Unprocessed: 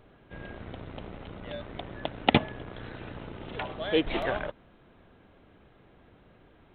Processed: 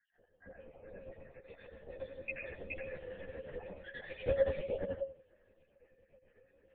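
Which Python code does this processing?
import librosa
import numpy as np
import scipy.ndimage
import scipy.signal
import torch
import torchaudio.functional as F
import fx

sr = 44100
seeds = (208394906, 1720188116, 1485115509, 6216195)

y = fx.spec_dropout(x, sr, seeds[0], share_pct=76)
y = fx.vowel_filter(y, sr, vowel='e')
y = fx.high_shelf(y, sr, hz=2400.0, db=-9.5)
y = fx.notch(y, sr, hz=610.0, q=12.0)
y = y + 10.0 ** (-3.5 / 20.0) * np.pad(y, (int(422 * sr / 1000.0), 0))[:len(y)]
y = fx.rev_plate(y, sr, seeds[1], rt60_s=0.53, hf_ratio=0.8, predelay_ms=75, drr_db=3.0)
y = fx.lpc_vocoder(y, sr, seeds[2], excitation='whisper', order=10)
y = fx.ensemble(y, sr)
y = y * 10.0 ** (10.5 / 20.0)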